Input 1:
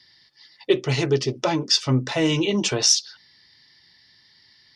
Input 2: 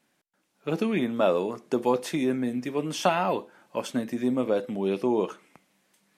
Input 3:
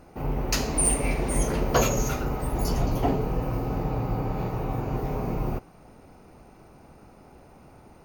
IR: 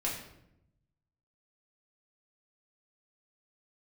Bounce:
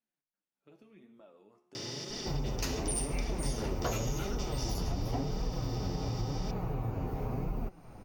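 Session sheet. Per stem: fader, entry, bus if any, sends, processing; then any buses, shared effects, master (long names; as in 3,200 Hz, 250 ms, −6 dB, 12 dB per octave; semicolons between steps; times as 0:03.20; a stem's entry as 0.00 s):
−18.0 dB, 1.75 s, no send, compressor on every frequency bin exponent 0.2; noise that follows the level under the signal 29 dB
−14.0 dB, 0.00 s, no send, downward compressor 6 to 1, threshold −30 dBFS, peak gain reduction 12 dB; tuned comb filter 71 Hz, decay 0.89 s, harmonics all, mix 70%
+2.0 dB, 2.10 s, no send, no processing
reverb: not used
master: low-shelf EQ 140 Hz +7 dB; flanger 0.92 Hz, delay 4 ms, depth 8 ms, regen +38%; downward compressor 3 to 1, threshold −33 dBFS, peak gain reduction 12 dB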